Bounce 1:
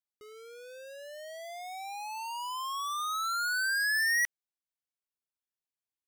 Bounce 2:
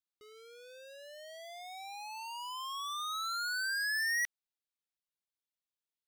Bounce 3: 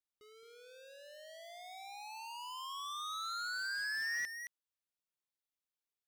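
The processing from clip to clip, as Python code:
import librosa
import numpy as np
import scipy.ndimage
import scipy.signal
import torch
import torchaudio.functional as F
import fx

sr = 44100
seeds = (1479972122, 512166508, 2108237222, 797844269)

y1 = fx.peak_eq(x, sr, hz=3700.0, db=6.5, octaves=0.89)
y1 = y1 * 10.0 ** (-6.0 / 20.0)
y2 = y1 + 10.0 ** (-9.5 / 20.0) * np.pad(y1, (int(219 * sr / 1000.0), 0))[:len(y1)]
y2 = fx.slew_limit(y2, sr, full_power_hz=96.0)
y2 = y2 * 10.0 ** (-4.0 / 20.0)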